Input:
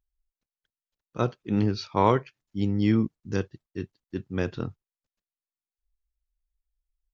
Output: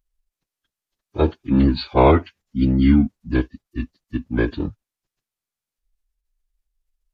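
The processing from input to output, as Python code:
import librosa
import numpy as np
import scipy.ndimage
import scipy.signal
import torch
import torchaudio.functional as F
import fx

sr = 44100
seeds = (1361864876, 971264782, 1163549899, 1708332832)

y = fx.pitch_keep_formants(x, sr, semitones=-7.5)
y = F.gain(torch.from_numpy(y), 8.5).numpy()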